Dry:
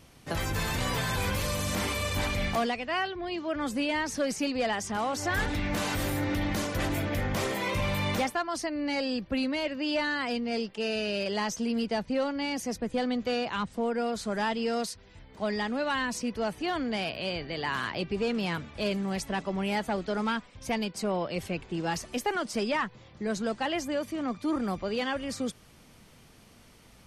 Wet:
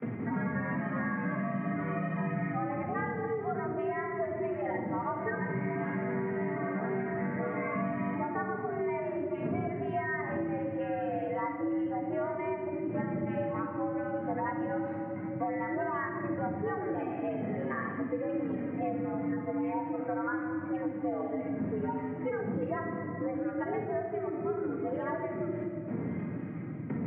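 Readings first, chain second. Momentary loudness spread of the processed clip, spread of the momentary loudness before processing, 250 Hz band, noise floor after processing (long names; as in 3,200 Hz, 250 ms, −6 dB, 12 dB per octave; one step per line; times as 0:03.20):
2 LU, 4 LU, −1.5 dB, −38 dBFS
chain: harmonic-percussive split with one part muted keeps harmonic
wind on the microphone 170 Hz −43 dBFS
noise gate with hold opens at −41 dBFS
Chebyshev low-pass filter 2,000 Hz, order 5
reversed playback
upward compression, threshold −35 dBFS
reversed playback
frequency shifter +93 Hz
rectangular room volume 1,600 cubic metres, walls mixed, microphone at 1.7 metres
multiband upward and downward compressor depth 100%
level −5 dB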